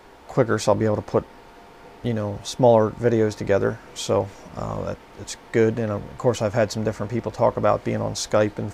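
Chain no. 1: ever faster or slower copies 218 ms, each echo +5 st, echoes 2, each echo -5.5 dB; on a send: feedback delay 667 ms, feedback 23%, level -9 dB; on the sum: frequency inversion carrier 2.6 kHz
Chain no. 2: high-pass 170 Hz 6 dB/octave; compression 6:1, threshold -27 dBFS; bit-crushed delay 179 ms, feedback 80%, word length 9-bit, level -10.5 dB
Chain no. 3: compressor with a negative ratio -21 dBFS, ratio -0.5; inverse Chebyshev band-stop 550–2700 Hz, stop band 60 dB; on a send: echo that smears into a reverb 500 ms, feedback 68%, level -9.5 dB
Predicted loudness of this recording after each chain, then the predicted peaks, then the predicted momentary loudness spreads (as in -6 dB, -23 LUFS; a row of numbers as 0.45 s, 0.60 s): -19.0 LUFS, -32.0 LUFS, -31.0 LUFS; -3.5 dBFS, -14.5 dBFS, -15.0 dBFS; 7 LU, 5 LU, 7 LU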